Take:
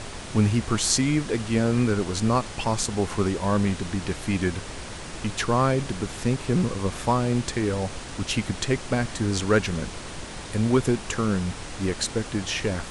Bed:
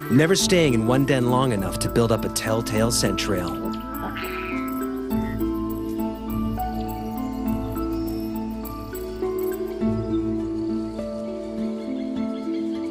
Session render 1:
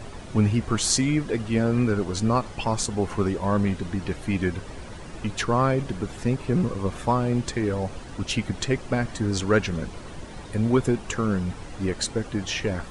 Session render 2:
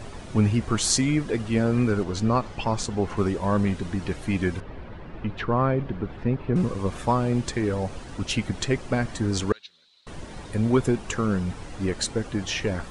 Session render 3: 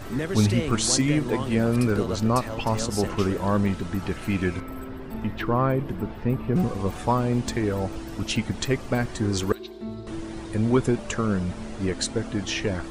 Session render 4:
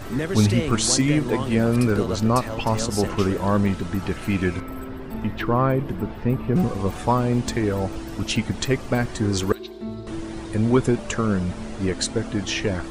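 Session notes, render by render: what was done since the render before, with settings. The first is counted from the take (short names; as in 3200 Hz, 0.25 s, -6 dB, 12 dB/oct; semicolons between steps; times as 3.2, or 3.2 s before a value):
denoiser 10 dB, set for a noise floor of -38 dBFS
2.03–3.17 air absorption 60 m; 4.6–6.56 air absorption 360 m; 9.52–10.07 band-pass 3900 Hz, Q 10
add bed -11.5 dB
gain +2.5 dB; limiter -3 dBFS, peak gain reduction 1.5 dB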